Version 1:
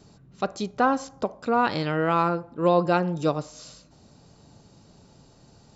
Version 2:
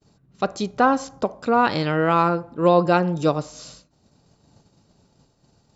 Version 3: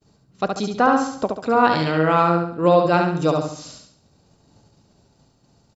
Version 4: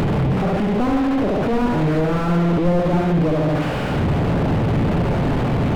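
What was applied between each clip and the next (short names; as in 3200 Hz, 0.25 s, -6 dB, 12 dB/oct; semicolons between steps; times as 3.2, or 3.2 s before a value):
expander -45 dBFS; gain +4 dB
feedback echo 70 ms, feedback 41%, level -4 dB
delta modulation 16 kbps, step -13.5 dBFS; reverb RT60 0.45 s, pre-delay 7 ms, DRR 16 dB; slew limiter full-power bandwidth 51 Hz; gain +2.5 dB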